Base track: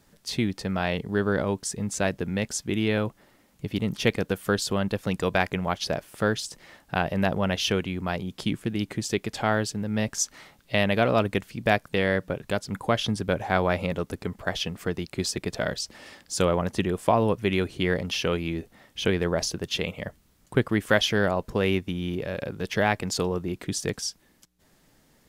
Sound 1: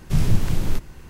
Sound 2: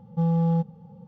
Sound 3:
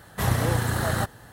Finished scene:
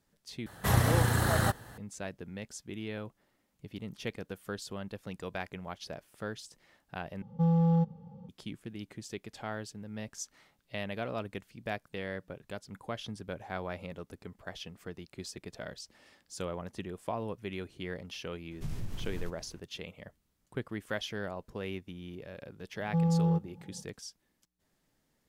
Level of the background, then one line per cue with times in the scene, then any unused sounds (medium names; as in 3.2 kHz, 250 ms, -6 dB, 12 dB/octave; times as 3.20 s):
base track -14.5 dB
0.46 s: replace with 3 -2 dB
7.22 s: replace with 2 -3 dB
18.51 s: add 1 -15.5 dB + peak limiter -12.5 dBFS
22.76 s: add 2 -4.5 dB